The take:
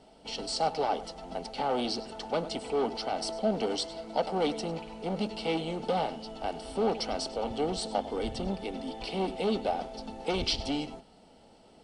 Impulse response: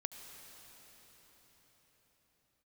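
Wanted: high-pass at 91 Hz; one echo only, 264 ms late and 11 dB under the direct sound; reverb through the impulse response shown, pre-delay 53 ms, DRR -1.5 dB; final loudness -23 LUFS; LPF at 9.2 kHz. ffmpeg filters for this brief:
-filter_complex "[0:a]highpass=91,lowpass=9200,aecho=1:1:264:0.282,asplit=2[s0][s1];[1:a]atrim=start_sample=2205,adelay=53[s2];[s1][s2]afir=irnorm=-1:irlink=0,volume=1.41[s3];[s0][s3]amix=inputs=2:normalize=0,volume=1.88"

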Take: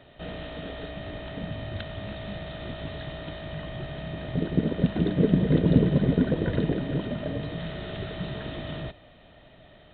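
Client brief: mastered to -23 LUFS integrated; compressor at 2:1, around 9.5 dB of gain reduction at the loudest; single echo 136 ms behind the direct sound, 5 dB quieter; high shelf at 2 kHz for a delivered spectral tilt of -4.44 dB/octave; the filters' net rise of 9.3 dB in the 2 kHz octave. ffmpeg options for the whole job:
-af "highshelf=f=2000:g=6,equalizer=f=2000:t=o:g=7.5,acompressor=threshold=0.0224:ratio=2,aecho=1:1:136:0.562,volume=2.99"

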